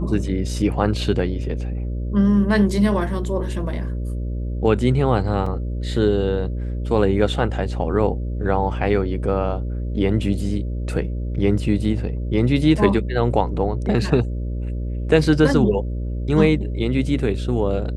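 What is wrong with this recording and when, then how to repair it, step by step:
buzz 60 Hz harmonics 10 -25 dBFS
5.46 s: dropout 3.9 ms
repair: de-hum 60 Hz, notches 10; interpolate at 5.46 s, 3.9 ms

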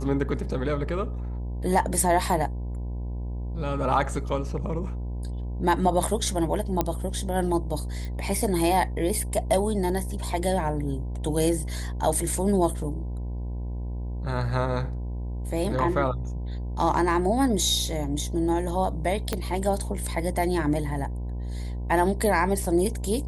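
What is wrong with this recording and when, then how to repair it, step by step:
buzz 60 Hz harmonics 17 -31 dBFS
6.81 s: pop -9 dBFS
8.05 s: pop
19.33 s: pop -11 dBFS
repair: de-click; de-hum 60 Hz, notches 17

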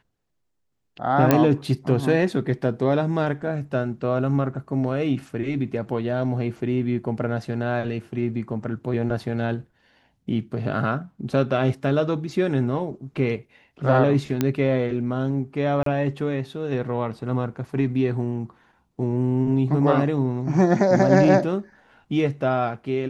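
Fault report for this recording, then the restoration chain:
1.31 s: pop -3 dBFS
14.41 s: pop -8 dBFS
15.83–15.86 s: dropout 33 ms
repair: de-click; interpolate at 15.83 s, 33 ms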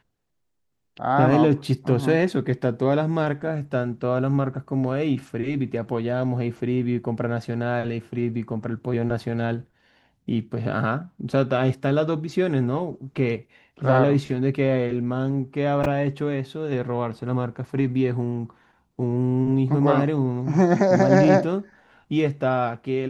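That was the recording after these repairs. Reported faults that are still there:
nothing left

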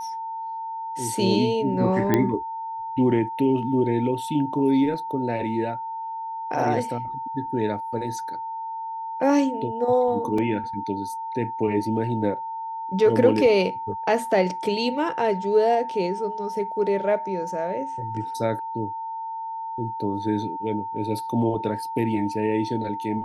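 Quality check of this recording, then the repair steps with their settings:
whine 900 Hz -29 dBFS
2.14 s: pop -7 dBFS
10.38 s: dropout 3.7 ms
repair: de-click; band-stop 900 Hz, Q 30; interpolate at 10.38 s, 3.7 ms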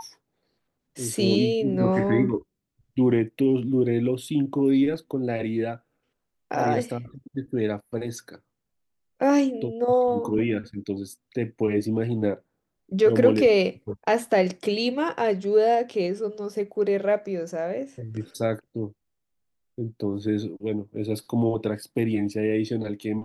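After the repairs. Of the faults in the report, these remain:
nothing left

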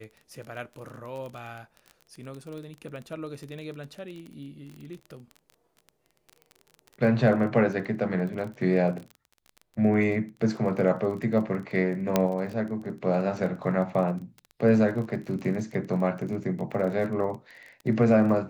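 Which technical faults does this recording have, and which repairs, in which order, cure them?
crackle 24 per s -35 dBFS
12.16 s: pop -7 dBFS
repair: de-click

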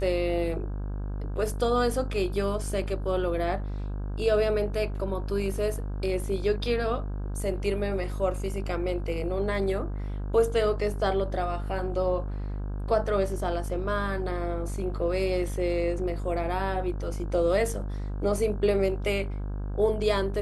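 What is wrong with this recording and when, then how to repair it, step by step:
buzz 50 Hz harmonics 33 -32 dBFS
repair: de-hum 50 Hz, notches 33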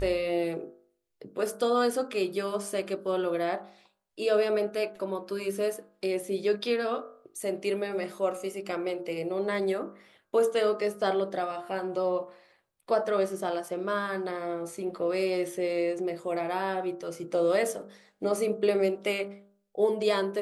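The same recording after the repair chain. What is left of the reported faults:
nothing left

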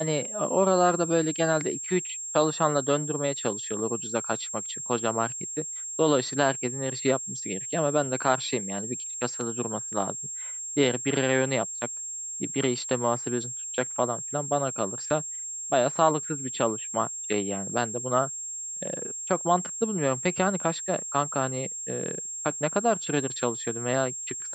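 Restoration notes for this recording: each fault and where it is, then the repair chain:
whine 7.5 kHz -33 dBFS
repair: band-stop 7.5 kHz, Q 30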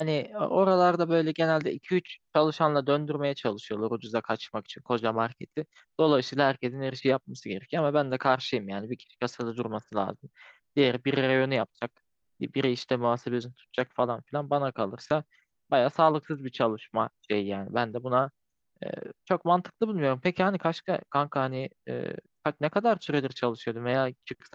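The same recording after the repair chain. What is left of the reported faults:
nothing left

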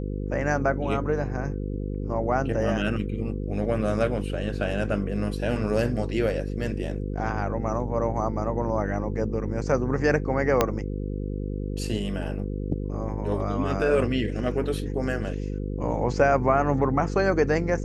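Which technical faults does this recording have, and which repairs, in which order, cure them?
buzz 50 Hz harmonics 10 -30 dBFS
10.61 s: pop -5 dBFS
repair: de-click; de-hum 50 Hz, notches 10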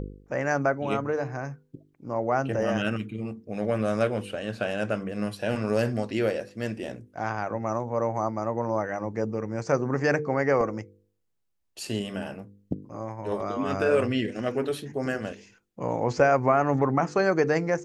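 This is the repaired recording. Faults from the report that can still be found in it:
10.61 s: pop

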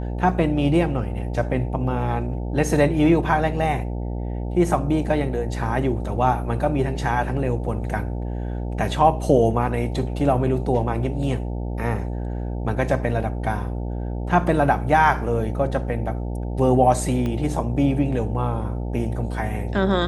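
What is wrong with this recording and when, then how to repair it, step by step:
buzz 60 Hz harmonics 15 -27 dBFS
17.26 s: pop -16 dBFS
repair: de-click; de-hum 60 Hz, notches 15

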